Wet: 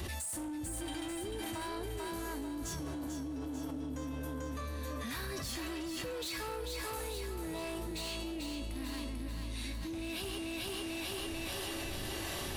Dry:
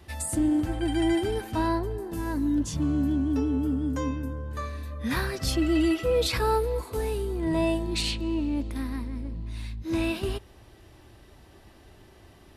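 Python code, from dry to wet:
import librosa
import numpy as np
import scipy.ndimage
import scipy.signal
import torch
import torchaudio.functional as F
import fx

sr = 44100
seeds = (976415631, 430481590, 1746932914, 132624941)

y = fx.high_shelf(x, sr, hz=2400.0, db=9.5)
y = fx.notch(y, sr, hz=5100.0, q=20.0)
y = fx.comb_fb(y, sr, f0_hz=560.0, decay_s=0.52, harmonics='all', damping=0.0, mix_pct=80)
y = 10.0 ** (-38.5 / 20.0) * np.tanh(y / 10.0 ** (-38.5 / 20.0))
y = fx.harmonic_tremolo(y, sr, hz=1.5, depth_pct=50, crossover_hz=490.0)
y = fx.echo_thinned(y, sr, ms=442, feedback_pct=53, hz=160.0, wet_db=-5)
y = fx.env_flatten(y, sr, amount_pct=100)
y = y * librosa.db_to_amplitude(1.0)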